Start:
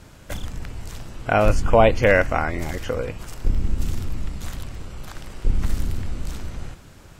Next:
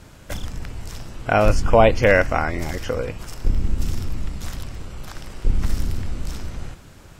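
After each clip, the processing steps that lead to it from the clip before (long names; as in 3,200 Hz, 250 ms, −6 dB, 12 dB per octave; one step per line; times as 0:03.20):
dynamic equaliser 5,300 Hz, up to +6 dB, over −58 dBFS, Q 5.7
level +1 dB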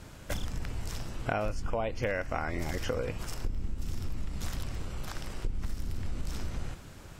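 downward compressor 16 to 1, threshold −24 dBFS, peak gain reduction 17 dB
level −3 dB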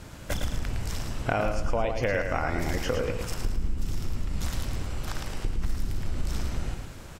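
repeating echo 110 ms, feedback 36%, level −6 dB
level +4 dB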